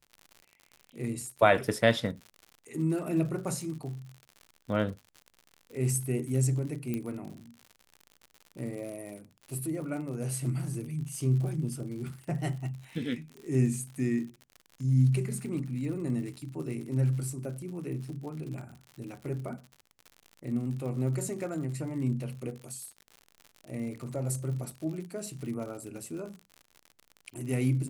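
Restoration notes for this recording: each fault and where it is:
crackle 80 per s -39 dBFS
6.94 s: pop -20 dBFS

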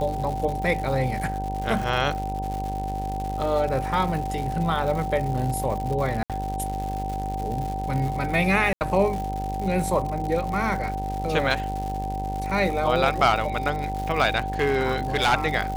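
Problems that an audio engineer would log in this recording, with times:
buzz 50 Hz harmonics 19 -31 dBFS
crackle 200 per s -30 dBFS
whine 770 Hz -29 dBFS
6.23–6.30 s: dropout 67 ms
8.73–8.81 s: dropout 79 ms
14.59–15.34 s: clipped -16 dBFS

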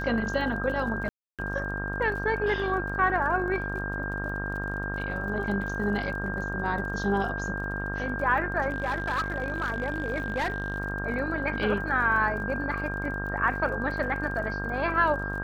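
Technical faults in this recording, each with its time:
buzz 50 Hz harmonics 34 -34 dBFS
crackle 38 per s -38 dBFS
whine 1.6 kHz -33 dBFS
1.09–1.39 s: dropout 297 ms
8.69–10.78 s: clipped -23.5 dBFS

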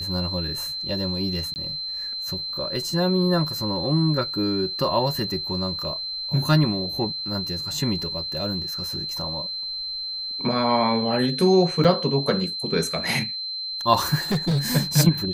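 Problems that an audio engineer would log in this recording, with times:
whine 4.1 kHz -28 dBFS
1.54–1.56 s: dropout 19 ms
11.84–11.85 s: dropout 5.7 ms
14.31–14.68 s: clipped -18.5 dBFS

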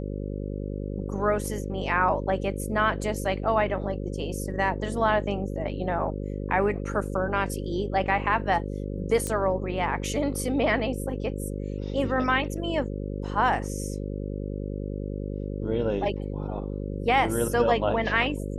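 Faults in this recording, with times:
buzz 50 Hz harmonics 11 -32 dBFS
9.27 s: pop -16 dBFS

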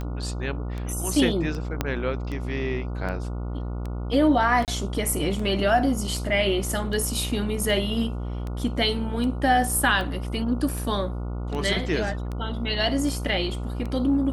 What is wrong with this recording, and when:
buzz 60 Hz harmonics 24 -30 dBFS
tick 78 rpm -21 dBFS
1.81 s: pop -9 dBFS
4.65–4.68 s: dropout 28 ms

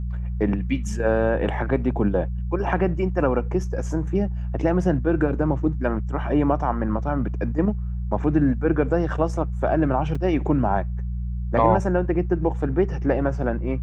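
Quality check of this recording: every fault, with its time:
hum 60 Hz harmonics 3 -27 dBFS
10.15 s: dropout 4.3 ms

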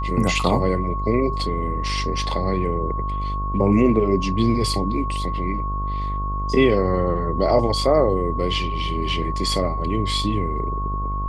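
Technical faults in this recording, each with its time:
buzz 50 Hz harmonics 27 -26 dBFS
whine 1.1 kHz -27 dBFS

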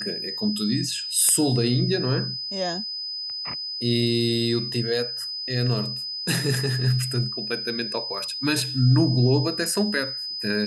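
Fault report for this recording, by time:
whine 5 kHz -29 dBFS

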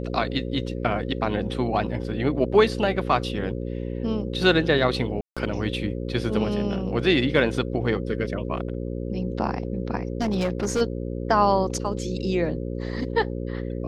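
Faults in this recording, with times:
buzz 60 Hz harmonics 9 -30 dBFS
5.21–5.37 s: dropout 156 ms
10.21–10.82 s: clipped -19 dBFS

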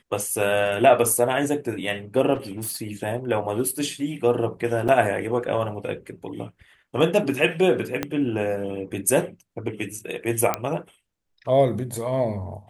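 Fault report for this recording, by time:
2.34–2.77 s: clipped -26.5 dBFS
4.88–4.89 s: dropout 5.8 ms
8.03 s: pop -10 dBFS
10.54 s: pop -7 dBFS

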